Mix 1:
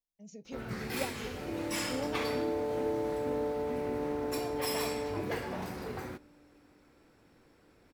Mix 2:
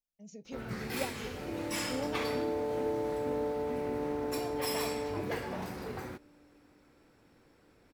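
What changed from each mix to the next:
reverb: off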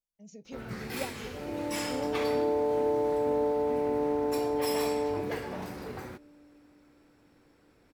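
second sound +6.5 dB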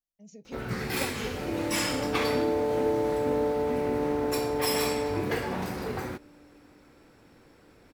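first sound +7.0 dB

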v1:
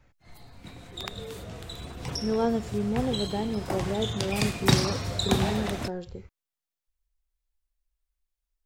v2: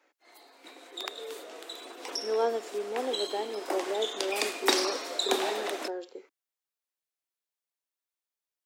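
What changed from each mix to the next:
master: add steep high-pass 300 Hz 48 dB/oct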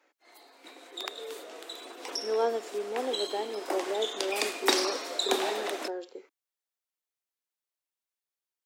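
none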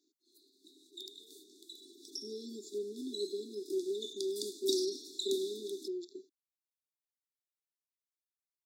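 background -8.0 dB; master: add brick-wall FIR band-stop 420–3400 Hz

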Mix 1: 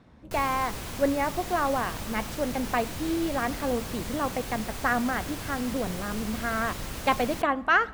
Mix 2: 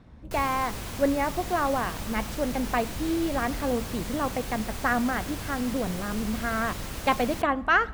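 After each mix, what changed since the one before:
speech: add low shelf 100 Hz +12 dB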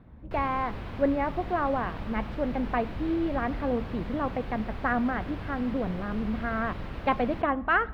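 master: add air absorption 400 m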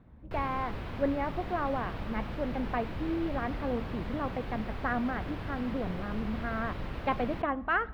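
speech -4.5 dB; master: add high shelf 12000 Hz +3.5 dB

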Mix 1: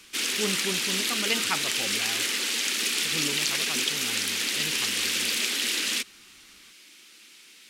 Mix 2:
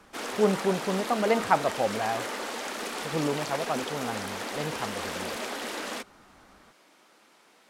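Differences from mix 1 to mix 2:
speech: remove rippled Chebyshev low-pass 4200 Hz, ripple 6 dB; master: add EQ curve 360 Hz 0 dB, 660 Hz +14 dB, 1000 Hz +9 dB, 2600 Hz -13 dB

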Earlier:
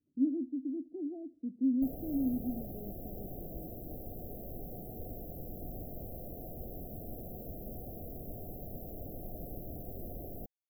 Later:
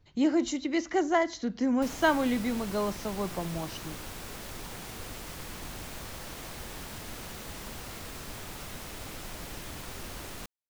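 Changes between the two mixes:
speech: remove vowel filter i; master: remove brick-wall FIR band-stop 770–12000 Hz

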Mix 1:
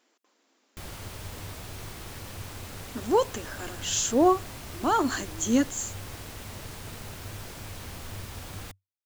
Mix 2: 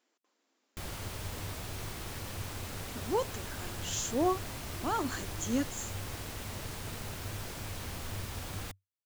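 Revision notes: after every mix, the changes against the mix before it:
speech -8.5 dB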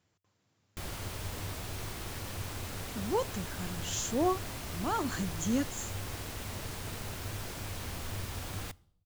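speech: remove brick-wall FIR high-pass 220 Hz; reverb: on, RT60 0.75 s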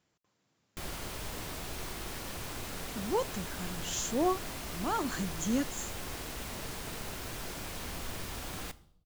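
background: send +8.0 dB; master: add bell 96 Hz -13.5 dB 0.4 oct

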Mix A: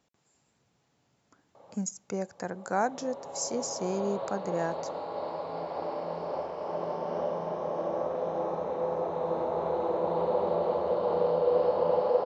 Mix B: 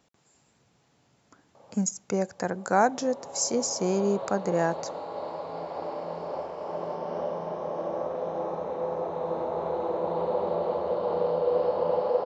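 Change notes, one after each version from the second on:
speech +6.0 dB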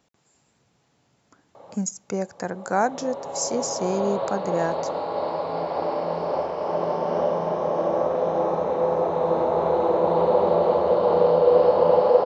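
background +8.5 dB

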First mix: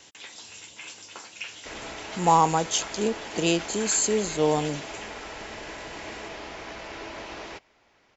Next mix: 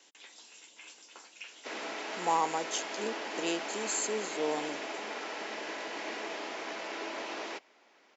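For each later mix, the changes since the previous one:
speech -9.5 dB; master: add HPF 240 Hz 24 dB/oct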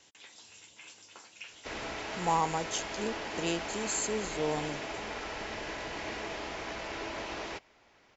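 master: remove HPF 240 Hz 24 dB/oct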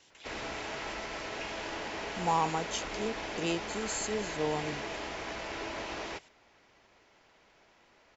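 speech: add LPF 6700 Hz; background: entry -1.40 s

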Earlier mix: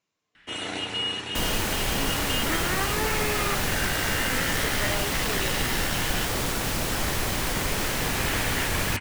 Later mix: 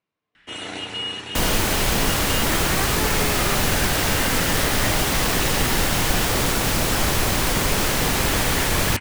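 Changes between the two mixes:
speech: add air absorption 240 m; second sound +6.5 dB

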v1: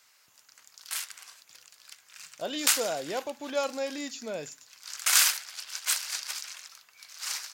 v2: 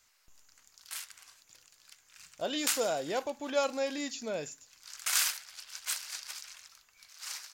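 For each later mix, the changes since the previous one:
background -7.0 dB; master: remove HPF 100 Hz 24 dB/oct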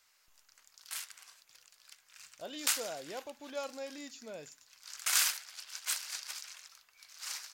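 speech -10.0 dB

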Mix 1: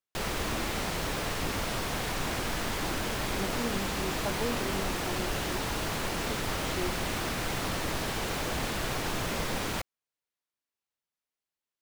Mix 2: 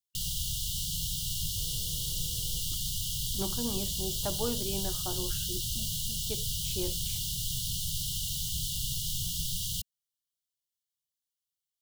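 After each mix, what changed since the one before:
background: add brick-wall FIR band-stop 180–2800 Hz; master: add high shelf 6100 Hz +8.5 dB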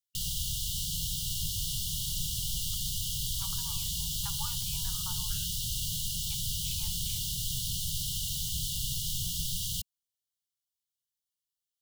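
speech: add rippled Chebyshev high-pass 840 Hz, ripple 3 dB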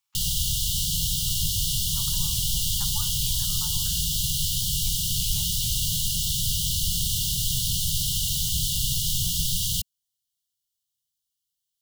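speech: entry -1.45 s; background +8.0 dB

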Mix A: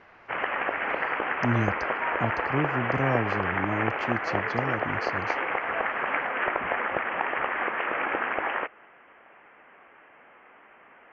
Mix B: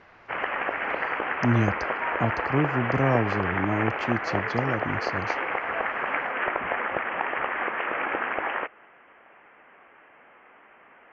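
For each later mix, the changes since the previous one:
speech +3.5 dB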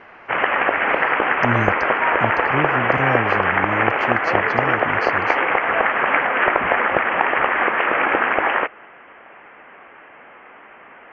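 background +10.0 dB

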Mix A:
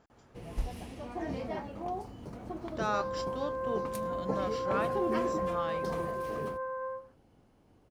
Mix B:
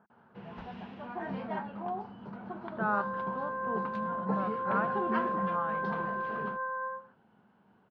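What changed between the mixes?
speech: add Bessel low-pass 1200 Hz, order 2; master: add speaker cabinet 180–3400 Hz, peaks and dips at 200 Hz +10 dB, 300 Hz -10 dB, 530 Hz -5 dB, 940 Hz +6 dB, 1500 Hz +10 dB, 2200 Hz -4 dB

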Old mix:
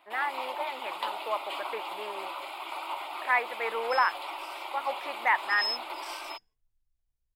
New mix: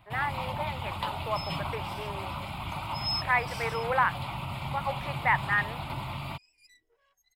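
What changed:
first sound: remove brick-wall FIR high-pass 300 Hz; second sound: entry -2.55 s; master: add low shelf 73 Hz -10.5 dB

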